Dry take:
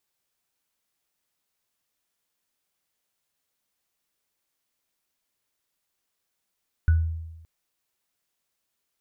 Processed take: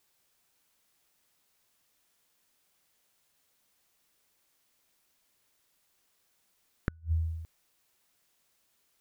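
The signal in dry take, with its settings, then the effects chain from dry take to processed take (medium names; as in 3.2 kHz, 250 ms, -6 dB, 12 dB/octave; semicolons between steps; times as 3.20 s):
sine partials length 0.57 s, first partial 81.4 Hz, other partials 1.48 kHz, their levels -17 dB, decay 1.02 s, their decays 0.26 s, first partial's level -13.5 dB
in parallel at +2 dB: compression 12:1, threshold -30 dBFS; on the sum: inverted gate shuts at -16 dBFS, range -35 dB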